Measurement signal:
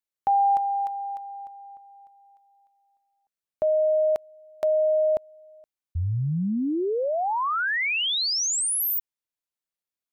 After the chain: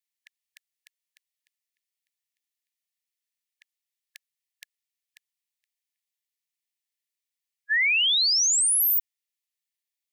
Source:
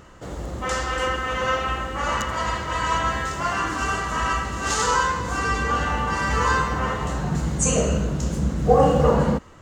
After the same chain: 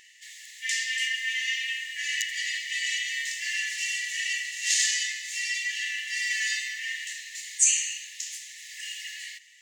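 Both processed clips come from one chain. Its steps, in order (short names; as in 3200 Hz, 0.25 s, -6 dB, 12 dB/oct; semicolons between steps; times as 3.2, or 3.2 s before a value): brick-wall FIR high-pass 1700 Hz; gain +3.5 dB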